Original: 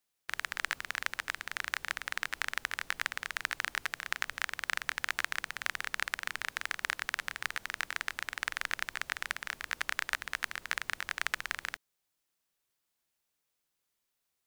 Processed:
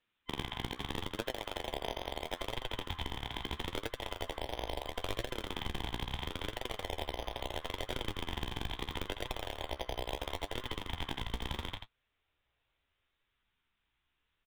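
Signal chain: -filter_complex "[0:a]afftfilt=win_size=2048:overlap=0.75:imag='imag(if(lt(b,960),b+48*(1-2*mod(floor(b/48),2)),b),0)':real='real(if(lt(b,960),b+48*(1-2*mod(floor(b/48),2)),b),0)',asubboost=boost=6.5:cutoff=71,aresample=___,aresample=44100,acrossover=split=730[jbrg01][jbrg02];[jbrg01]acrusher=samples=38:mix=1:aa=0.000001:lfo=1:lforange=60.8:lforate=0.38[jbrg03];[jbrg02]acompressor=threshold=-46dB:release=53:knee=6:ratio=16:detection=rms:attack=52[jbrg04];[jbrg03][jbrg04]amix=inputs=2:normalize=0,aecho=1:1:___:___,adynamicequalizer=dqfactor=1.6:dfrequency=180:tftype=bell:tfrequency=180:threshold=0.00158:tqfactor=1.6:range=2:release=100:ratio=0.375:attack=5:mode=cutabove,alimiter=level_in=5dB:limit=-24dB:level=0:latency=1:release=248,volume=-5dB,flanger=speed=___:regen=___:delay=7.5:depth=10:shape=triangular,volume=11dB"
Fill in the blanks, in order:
8000, 84, 0.398, 0.75, 46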